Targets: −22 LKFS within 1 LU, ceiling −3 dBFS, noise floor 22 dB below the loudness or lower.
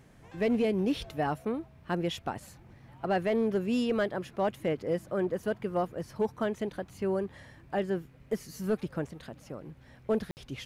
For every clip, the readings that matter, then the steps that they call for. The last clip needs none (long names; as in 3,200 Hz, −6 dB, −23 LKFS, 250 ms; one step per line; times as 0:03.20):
share of clipped samples 0.4%; peaks flattened at −21.0 dBFS; number of dropouts 1; longest dropout 59 ms; integrated loudness −32.0 LKFS; sample peak −21.0 dBFS; target loudness −22.0 LKFS
→ clipped peaks rebuilt −21 dBFS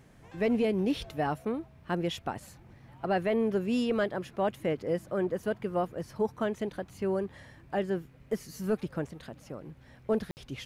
share of clipped samples 0.0%; number of dropouts 1; longest dropout 59 ms
→ repair the gap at 0:10.31, 59 ms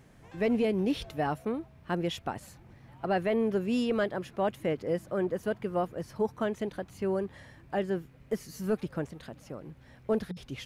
number of dropouts 0; integrated loudness −32.0 LKFS; sample peak −18.0 dBFS; target loudness −22.0 LKFS
→ level +10 dB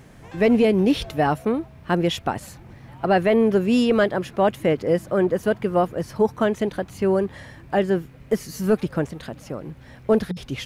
integrated loudness −22.0 LKFS; sample peak −8.0 dBFS; background noise floor −46 dBFS